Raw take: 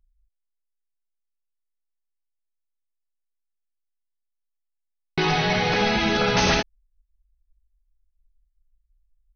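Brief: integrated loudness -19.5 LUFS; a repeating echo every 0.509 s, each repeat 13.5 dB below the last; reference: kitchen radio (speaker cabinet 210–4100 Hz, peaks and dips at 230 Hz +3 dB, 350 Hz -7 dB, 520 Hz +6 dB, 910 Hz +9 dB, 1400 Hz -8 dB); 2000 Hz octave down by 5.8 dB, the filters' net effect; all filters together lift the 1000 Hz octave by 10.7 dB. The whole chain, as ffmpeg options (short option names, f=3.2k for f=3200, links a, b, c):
-af "highpass=210,equalizer=f=230:t=q:w=4:g=3,equalizer=f=350:t=q:w=4:g=-7,equalizer=f=520:t=q:w=4:g=6,equalizer=f=910:t=q:w=4:g=9,equalizer=f=1.4k:t=q:w=4:g=-8,lowpass=f=4.1k:w=0.5412,lowpass=f=4.1k:w=1.3066,equalizer=f=1k:t=o:g=9,equalizer=f=2k:t=o:g=-8,aecho=1:1:509|1018:0.211|0.0444,volume=-1.5dB"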